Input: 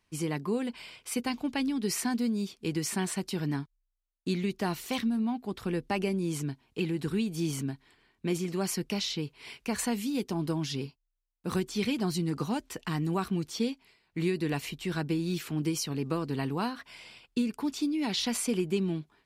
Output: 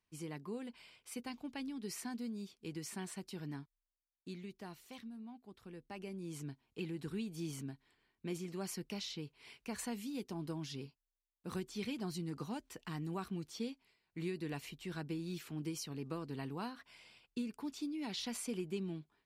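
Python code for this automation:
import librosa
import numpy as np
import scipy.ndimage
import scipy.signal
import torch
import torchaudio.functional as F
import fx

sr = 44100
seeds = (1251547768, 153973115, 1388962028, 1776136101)

y = fx.gain(x, sr, db=fx.line((3.62, -13.0), (4.96, -20.0), (5.76, -20.0), (6.47, -11.0)))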